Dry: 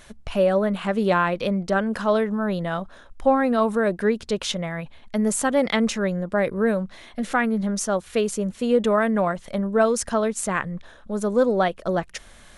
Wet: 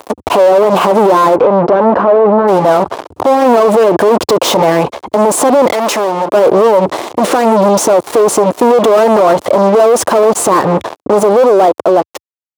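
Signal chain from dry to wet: fade out at the end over 1.83 s; fuzz box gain 40 dB, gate -42 dBFS; 4.01–4.70 s: waveshaping leveller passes 1; high-pass 86 Hz 24 dB/octave; high-order bell 580 Hz +15.5 dB 2.3 oct; peak limiter -1.5 dBFS, peak gain reduction 9 dB; 1.35–2.47 s: low-pass 2.3 kHz -> 1.3 kHz 12 dB/octave; 5.73–6.34 s: bass shelf 460 Hz -11 dB

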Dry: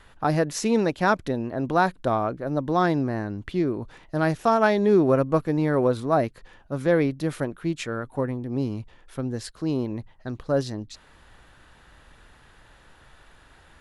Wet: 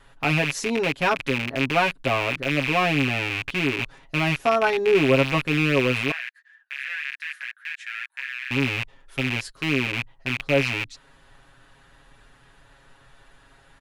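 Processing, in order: rattle on loud lows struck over -38 dBFS, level -12 dBFS; 6.11–8.51 s: ladder high-pass 1.6 kHz, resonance 80%; comb 7.3 ms, depth 88%; trim -3.5 dB

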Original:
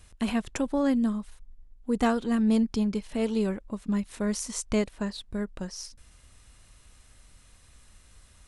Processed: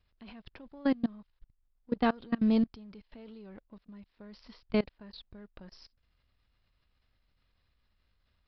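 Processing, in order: companding laws mixed up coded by A; level held to a coarse grid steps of 24 dB; resampled via 11.025 kHz

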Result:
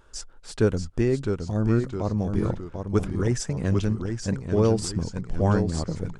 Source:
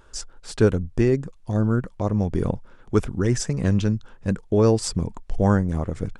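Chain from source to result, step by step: ever faster or slower copies 623 ms, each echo -1 st, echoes 3, each echo -6 dB; trim -3.5 dB

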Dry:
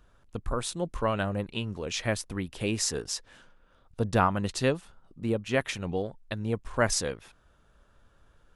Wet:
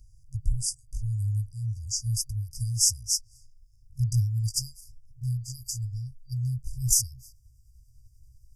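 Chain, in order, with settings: pitch bend over the whole clip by +3.5 st starting unshifted; FFT band-reject 130–4700 Hz; trim +8.5 dB

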